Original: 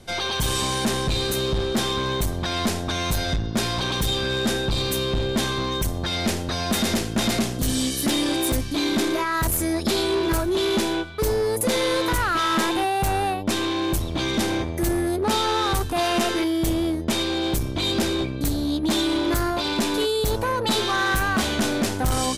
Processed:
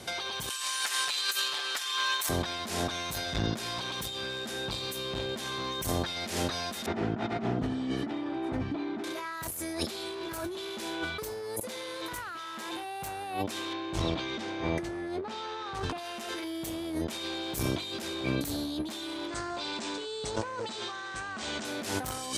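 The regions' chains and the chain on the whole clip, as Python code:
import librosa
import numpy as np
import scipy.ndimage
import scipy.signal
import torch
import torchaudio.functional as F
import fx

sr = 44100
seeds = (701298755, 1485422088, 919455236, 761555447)

y = fx.chain(x, sr, fx.highpass(hz=1300.0, slope=12),
    fx.comb(ms=6.9, depth=0.82),
    fx.over_compress(threshold_db=-33.0, ratio=-0.5), at=(0.49, 2.29))
y = fx.chain(y, sr, fx.lowpass(hz=1300.0, slope=12),
    fx.notch_comb(f0_hz=540.0), at=(6.86, 9.04))
y = fx.chain(y, sr, fx.air_absorb(metres=120.0),
    fx.doubler(ms=18.0, db=-12), at=(13.73, 15.98))
y = fx.chain(y, sr, fx.quant_float(bits=2),
    fx.cheby1_lowpass(hz=8400.0, order=5), at=(19.28, 21.65))
y = scipy.signal.sosfilt(scipy.signal.butter(2, 79.0, 'highpass', fs=sr, output='sos'), y)
y = fx.low_shelf(y, sr, hz=380.0, db=-8.5)
y = fx.over_compress(y, sr, threshold_db=-35.0, ratio=-1.0)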